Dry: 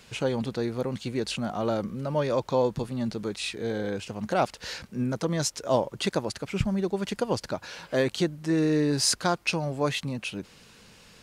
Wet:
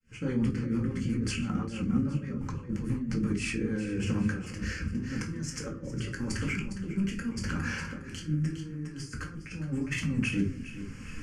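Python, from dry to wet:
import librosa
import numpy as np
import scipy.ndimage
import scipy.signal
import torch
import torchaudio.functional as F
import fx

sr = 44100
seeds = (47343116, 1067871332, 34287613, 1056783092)

y = fx.fade_in_head(x, sr, length_s=0.6)
y = fx.low_shelf(y, sr, hz=110.0, db=7.5)
y = fx.over_compress(y, sr, threshold_db=-32.0, ratio=-0.5)
y = scipy.signal.sosfilt(scipy.signal.butter(2, 7700.0, 'lowpass', fs=sr, output='sos'), y)
y = fx.peak_eq(y, sr, hz=960.0, db=-5.0, octaves=0.32)
y = fx.fixed_phaser(y, sr, hz=1600.0, stages=4)
y = fx.echo_feedback(y, sr, ms=409, feedback_pct=32, wet_db=-10.5)
y = fx.room_shoebox(y, sr, seeds[0], volume_m3=300.0, walls='furnished', distance_m=2.1)
y = fx.rotary_switch(y, sr, hz=6.0, then_hz=0.85, switch_at_s=3.23)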